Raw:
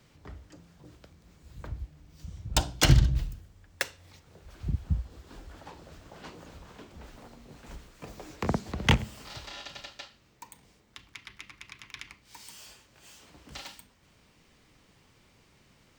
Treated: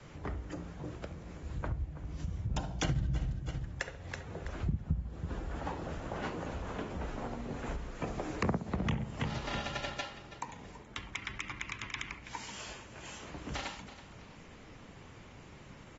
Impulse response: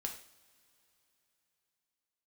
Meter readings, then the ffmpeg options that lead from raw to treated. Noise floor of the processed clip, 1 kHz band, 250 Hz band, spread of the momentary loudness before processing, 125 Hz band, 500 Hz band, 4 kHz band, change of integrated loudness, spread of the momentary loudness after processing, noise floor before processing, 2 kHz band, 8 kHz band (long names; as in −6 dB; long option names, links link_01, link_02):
−53 dBFS, −1.0 dB, −1.5 dB, 23 LU, −5.5 dB, 0.0 dB, −8.5 dB, −9.0 dB, 17 LU, −63 dBFS, −3.0 dB, −9.0 dB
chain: -filter_complex "[0:a]asplit=2[link_01][link_02];[link_02]aecho=0:1:327|654|981:0.133|0.044|0.0145[link_03];[link_01][link_03]amix=inputs=2:normalize=0,acontrast=27,adynamicequalizer=threshold=0.01:dfrequency=170:dqfactor=1.4:tfrequency=170:tqfactor=1.4:attack=5:release=100:ratio=0.375:range=3:mode=boostabove:tftype=bell,asplit=2[link_04][link_05];[link_05]adelay=68,lowpass=frequency=1300:poles=1,volume=-12dB,asplit=2[link_06][link_07];[link_07]adelay=68,lowpass=frequency=1300:poles=1,volume=0.27,asplit=2[link_08][link_09];[link_09]adelay=68,lowpass=frequency=1300:poles=1,volume=0.27[link_10];[link_06][link_08][link_10]amix=inputs=3:normalize=0[link_11];[link_04][link_11]amix=inputs=2:normalize=0,alimiter=limit=-13dB:level=0:latency=1:release=374,equalizer=frequency=4500:width_type=o:width=1.4:gain=-9.5,acompressor=threshold=-42dB:ratio=2.5,volume=5.5dB" -ar 44100 -c:a aac -b:a 24k